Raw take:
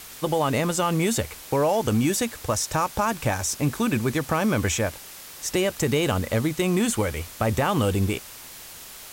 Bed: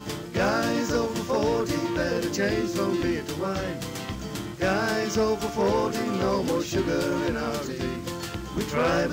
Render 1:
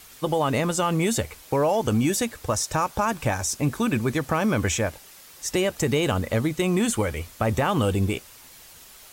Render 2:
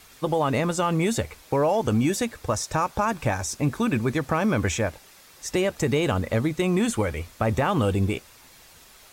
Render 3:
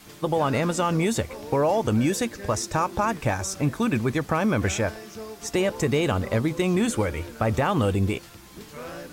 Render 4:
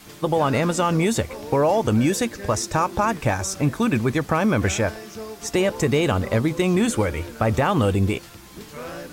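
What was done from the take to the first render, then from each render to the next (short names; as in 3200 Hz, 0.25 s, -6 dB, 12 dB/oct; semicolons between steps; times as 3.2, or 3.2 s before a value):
denoiser 7 dB, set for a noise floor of -42 dBFS
high shelf 6600 Hz -7.5 dB; notch 3000 Hz, Q 22
add bed -14.5 dB
gain +3 dB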